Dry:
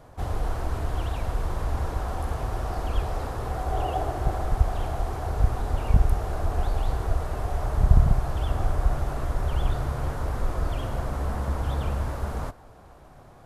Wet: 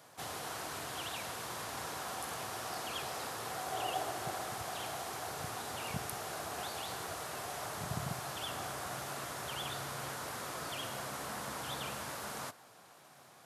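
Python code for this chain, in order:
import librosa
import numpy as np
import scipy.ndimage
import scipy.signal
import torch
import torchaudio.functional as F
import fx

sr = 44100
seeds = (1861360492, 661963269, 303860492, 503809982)

y = scipy.signal.sosfilt(scipy.signal.butter(4, 130.0, 'highpass', fs=sr, output='sos'), x)
y = fx.tilt_shelf(y, sr, db=-9.5, hz=1400.0)
y = y * 10.0 ** (-3.0 / 20.0)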